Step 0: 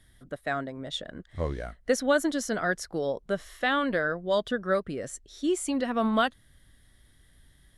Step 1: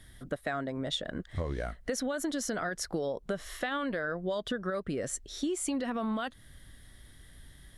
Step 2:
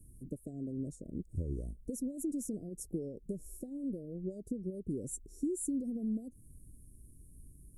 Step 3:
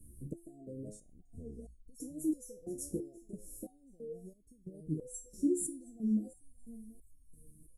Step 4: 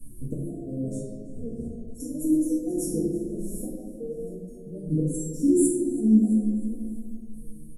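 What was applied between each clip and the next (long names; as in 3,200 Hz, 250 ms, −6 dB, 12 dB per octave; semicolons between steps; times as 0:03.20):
brickwall limiter −22 dBFS, peak gain reduction 10 dB; downward compressor, threshold −36 dBFS, peak gain reduction 10.5 dB; level +6 dB
inverse Chebyshev band-stop filter 1,000–3,500 Hz, stop band 60 dB; level −1.5 dB
repeating echo 727 ms, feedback 31%, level −18 dB; step-sequenced resonator 3 Hz 71–1,100 Hz; level +11 dB
repeating echo 326 ms, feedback 57%, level −21 dB; convolution reverb RT60 1.7 s, pre-delay 4 ms, DRR −7 dB; level +4.5 dB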